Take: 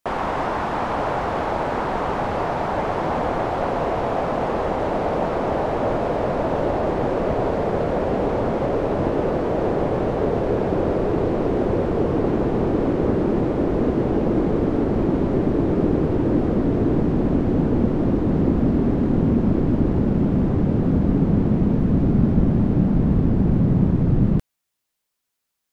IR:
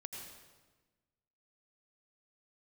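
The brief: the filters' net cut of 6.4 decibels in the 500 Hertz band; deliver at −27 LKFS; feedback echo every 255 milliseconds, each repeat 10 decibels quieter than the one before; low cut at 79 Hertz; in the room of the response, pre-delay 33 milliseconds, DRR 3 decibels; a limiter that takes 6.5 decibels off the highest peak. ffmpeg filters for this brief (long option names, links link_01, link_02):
-filter_complex "[0:a]highpass=79,equalizer=frequency=500:width_type=o:gain=-8.5,alimiter=limit=-14dB:level=0:latency=1,aecho=1:1:255|510|765|1020:0.316|0.101|0.0324|0.0104,asplit=2[link_01][link_02];[1:a]atrim=start_sample=2205,adelay=33[link_03];[link_02][link_03]afir=irnorm=-1:irlink=0,volume=0dB[link_04];[link_01][link_04]amix=inputs=2:normalize=0,volume=-5dB"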